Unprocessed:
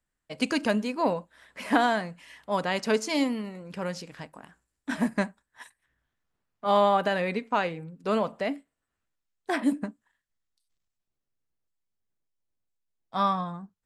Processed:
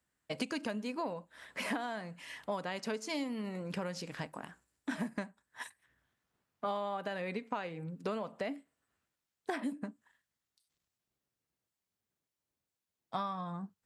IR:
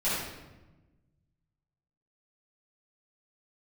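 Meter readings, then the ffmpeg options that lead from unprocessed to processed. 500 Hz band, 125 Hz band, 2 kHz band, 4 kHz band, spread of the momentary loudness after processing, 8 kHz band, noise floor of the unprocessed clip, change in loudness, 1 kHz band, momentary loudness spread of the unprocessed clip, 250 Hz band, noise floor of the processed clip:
−11.5 dB, −7.0 dB, −10.0 dB, −9.5 dB, 9 LU, −8.0 dB, −84 dBFS, −11.5 dB, −12.5 dB, 17 LU, −10.0 dB, below −85 dBFS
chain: -af "highpass=77,acompressor=threshold=-36dB:ratio=12,volume=2.5dB"

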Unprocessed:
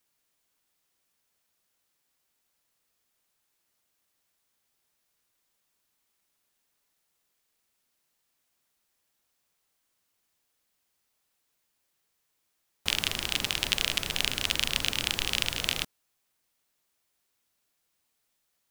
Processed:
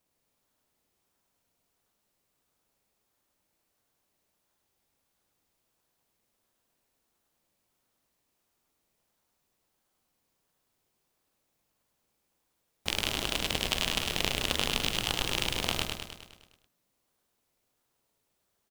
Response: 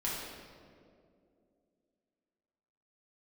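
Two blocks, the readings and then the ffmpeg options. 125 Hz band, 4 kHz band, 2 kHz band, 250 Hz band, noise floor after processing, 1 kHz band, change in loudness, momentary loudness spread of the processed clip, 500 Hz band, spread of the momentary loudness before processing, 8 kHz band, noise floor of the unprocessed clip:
+2.5 dB, −2.0 dB, −2.0 dB, +4.0 dB, −78 dBFS, +3.5 dB, −2.0 dB, 9 LU, +5.5 dB, 4 LU, −2.0 dB, −77 dBFS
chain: -filter_complex "[0:a]asplit=2[link_01][link_02];[link_02]acrusher=samples=22:mix=1:aa=0.000001:lfo=1:lforange=13.2:lforate=1.5,volume=-5dB[link_03];[link_01][link_03]amix=inputs=2:normalize=0,aecho=1:1:103|206|309|412|515|618|721|824:0.631|0.366|0.212|0.123|0.0714|0.0414|0.024|0.0139,volume=-4.5dB"

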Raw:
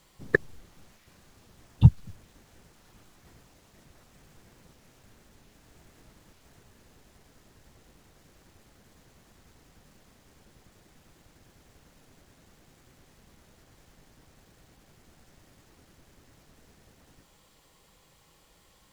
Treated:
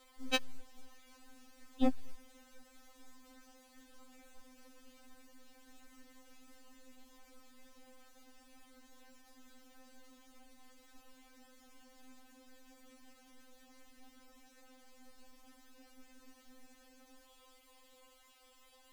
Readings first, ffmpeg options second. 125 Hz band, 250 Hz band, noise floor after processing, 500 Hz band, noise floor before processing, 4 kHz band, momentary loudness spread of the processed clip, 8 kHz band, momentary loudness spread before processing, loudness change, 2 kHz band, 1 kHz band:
below −35 dB, −5.0 dB, −64 dBFS, −8.0 dB, −62 dBFS, +8.5 dB, 5 LU, can't be measured, 7 LU, −12.5 dB, −12.0 dB, +2.5 dB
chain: -af "aeval=exprs='0.211*(abs(mod(val(0)/0.211+3,4)-2)-1)':channel_layout=same,afftfilt=real='re*3.46*eq(mod(b,12),0)':imag='im*3.46*eq(mod(b,12),0)':win_size=2048:overlap=0.75"

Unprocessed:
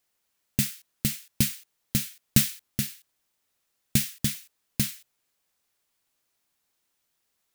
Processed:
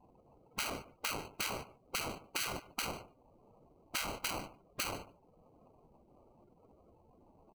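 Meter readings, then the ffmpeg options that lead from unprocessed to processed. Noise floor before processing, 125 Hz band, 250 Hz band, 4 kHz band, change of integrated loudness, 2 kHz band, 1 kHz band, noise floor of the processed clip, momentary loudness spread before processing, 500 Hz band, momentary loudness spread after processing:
−77 dBFS, −20.5 dB, −17.5 dB, −6.5 dB, −11.5 dB, −1.5 dB, +12.5 dB, −67 dBFS, 10 LU, +3.5 dB, 8 LU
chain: -af "highshelf=frequency=4800:gain=8.5,afftfilt=real='re*lt(hypot(re,im),0.178)':imag='im*lt(hypot(re,im),0.178)':win_size=1024:overlap=0.75,equalizer=frequency=440:width_type=o:width=0.66:gain=-6,aecho=1:1:6.5:0.48,acrusher=samples=25:mix=1:aa=0.000001,acontrast=62,afftfilt=real='re*lt(hypot(re,im),0.251)':imag='im*lt(hypot(re,im),0.251)':win_size=1024:overlap=0.75,acompressor=threshold=-46dB:ratio=2,aecho=1:1:146|292:0.141|0.0283,afftdn=noise_reduction=22:noise_floor=-59,volume=1dB"

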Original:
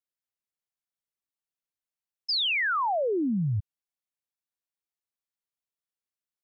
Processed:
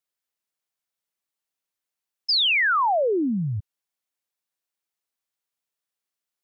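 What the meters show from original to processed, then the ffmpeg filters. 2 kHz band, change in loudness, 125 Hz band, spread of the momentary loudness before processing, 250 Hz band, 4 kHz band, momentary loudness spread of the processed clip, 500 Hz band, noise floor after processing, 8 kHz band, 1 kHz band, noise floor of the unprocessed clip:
+6.0 dB, +5.5 dB, +0.5 dB, 8 LU, +3.0 dB, +6.0 dB, 14 LU, +5.0 dB, below −85 dBFS, can't be measured, +5.5 dB, below −85 dBFS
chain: -af "lowshelf=frequency=190:gain=-8.5,volume=6dB"

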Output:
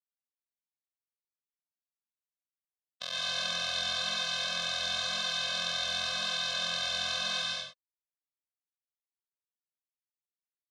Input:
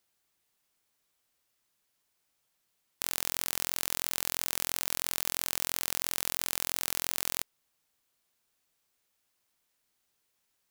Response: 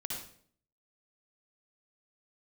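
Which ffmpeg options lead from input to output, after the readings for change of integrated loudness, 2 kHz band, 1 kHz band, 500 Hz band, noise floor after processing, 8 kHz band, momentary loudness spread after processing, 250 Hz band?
+0.5 dB, +6.0 dB, +3.0 dB, +3.5 dB, below −85 dBFS, −7.5 dB, 4 LU, −2.5 dB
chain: -filter_complex "[0:a]acrossover=split=1400[link_01][link_02];[link_01]acrusher=bits=3:mode=log:mix=0:aa=0.000001[link_03];[link_03][link_02]amix=inputs=2:normalize=0,highpass=220,equalizer=frequency=270:width_type=q:width=4:gain=-8,equalizer=frequency=1000:width_type=q:width=4:gain=-4,equalizer=frequency=2100:width_type=q:width=4:gain=-8,equalizer=frequency=3600:width_type=q:width=4:gain=10,lowpass=frequency=4900:width=0.5412,lowpass=frequency=4900:width=1.3066,flanger=delay=15.5:depth=6.4:speed=0.95,aeval=exprs='sgn(val(0))*max(abs(val(0))-0.00266,0)':channel_layout=same[link_04];[1:a]atrim=start_sample=2205,afade=type=out:start_time=0.2:duration=0.01,atrim=end_sample=9261,asetrate=22932,aresample=44100[link_05];[link_04][link_05]afir=irnorm=-1:irlink=0,afftfilt=real='re*eq(mod(floor(b*sr/1024/250),2),0)':imag='im*eq(mod(floor(b*sr/1024/250),2),0)':win_size=1024:overlap=0.75,volume=7dB"

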